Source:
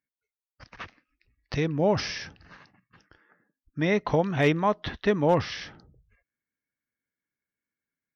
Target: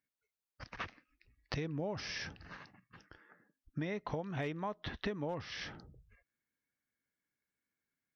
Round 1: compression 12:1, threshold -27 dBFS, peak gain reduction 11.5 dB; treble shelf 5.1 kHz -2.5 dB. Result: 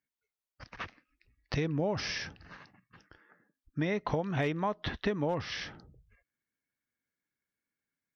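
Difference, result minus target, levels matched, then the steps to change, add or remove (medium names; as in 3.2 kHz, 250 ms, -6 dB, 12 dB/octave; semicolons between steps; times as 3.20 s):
compression: peak gain reduction -7.5 dB
change: compression 12:1, threshold -35 dBFS, peak gain reduction 19 dB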